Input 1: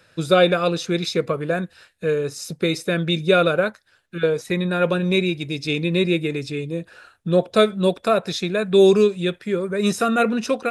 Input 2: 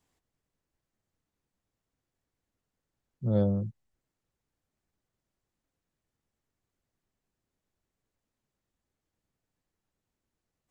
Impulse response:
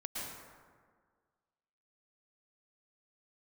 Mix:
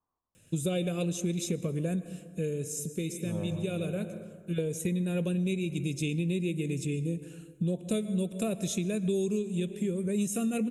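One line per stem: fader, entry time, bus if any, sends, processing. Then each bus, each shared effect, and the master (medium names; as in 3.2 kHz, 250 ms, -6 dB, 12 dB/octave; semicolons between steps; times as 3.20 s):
0.0 dB, 0.35 s, send -15 dB, FFT filter 230 Hz 0 dB, 1.4 kHz -23 dB, 2.9 kHz -5 dB, 4.7 kHz -18 dB, 6.8 kHz +5 dB; auto duck -11 dB, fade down 1.00 s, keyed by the second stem
-3.5 dB, 0.00 s, send -3 dB, four-pole ladder low-pass 1.2 kHz, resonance 70%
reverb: on, RT60 1.7 s, pre-delay 103 ms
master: compression 6:1, threshold -27 dBFS, peak gain reduction 12 dB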